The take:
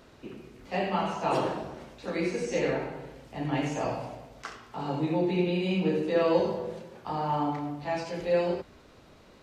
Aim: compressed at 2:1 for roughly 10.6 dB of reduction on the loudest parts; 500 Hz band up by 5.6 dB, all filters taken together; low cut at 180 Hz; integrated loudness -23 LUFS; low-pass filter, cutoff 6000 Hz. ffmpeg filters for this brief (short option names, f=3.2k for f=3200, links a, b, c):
-af "highpass=180,lowpass=6k,equalizer=f=500:t=o:g=6.5,acompressor=threshold=-33dB:ratio=2,volume=10.5dB"